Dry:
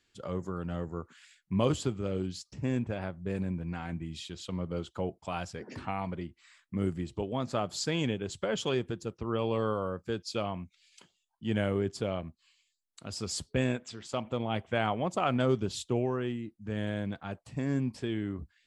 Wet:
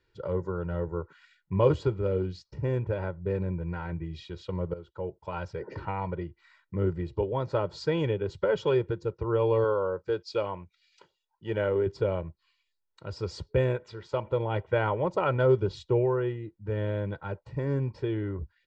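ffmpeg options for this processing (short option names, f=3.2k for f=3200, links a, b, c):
-filter_complex "[0:a]asettb=1/sr,asplit=3[a][b][c];[a]atrim=end=9.644[d];[b]atrim=start=9.64:end=11.87,asetpts=PTS-STARTPTS,afade=t=in:d=0.004:c=qsin,afade=t=out:st=2.226:d=0.004:c=qsin,bass=f=250:g=-8,treble=f=4k:g=4[e];[c]atrim=start=11.866[f];[d][e]acrossfade=d=0.004:c1=hsin:c2=qsin[g];[g][f]acrossfade=d=0.004:c1=qsin:c2=hsin,asplit=2[h][i];[h]atrim=end=4.74,asetpts=PTS-STARTPTS,afade=t=out:st=4.736:d=0.004:c=hsin:silence=0.16788[j];[i]atrim=start=4.74,asetpts=PTS-STARTPTS,afade=t=in:d=0.84:silence=0.16788[k];[j][k]concat=n=2:v=0:a=1,lowpass=f=4.2k:w=0.5412,lowpass=f=4.2k:w=1.3066,equalizer=f=3.1k:t=o:w=1.2:g=-11,aecho=1:1:2.1:0.84,volume=3dB"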